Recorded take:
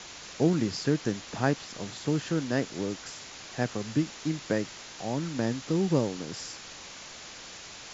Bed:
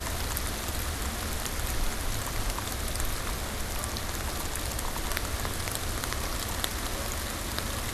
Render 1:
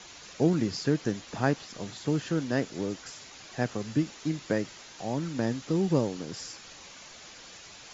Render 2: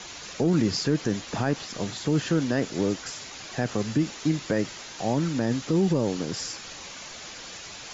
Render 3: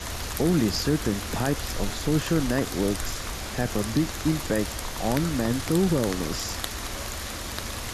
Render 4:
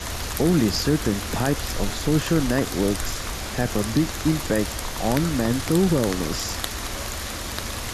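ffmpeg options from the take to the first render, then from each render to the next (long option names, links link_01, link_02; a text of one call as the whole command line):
ffmpeg -i in.wav -af "afftdn=noise_reduction=6:noise_floor=-45" out.wav
ffmpeg -i in.wav -af "acontrast=89,alimiter=limit=-14dB:level=0:latency=1:release=38" out.wav
ffmpeg -i in.wav -i bed.wav -filter_complex "[1:a]volume=-1.5dB[link_01];[0:a][link_01]amix=inputs=2:normalize=0" out.wav
ffmpeg -i in.wav -af "volume=3dB" out.wav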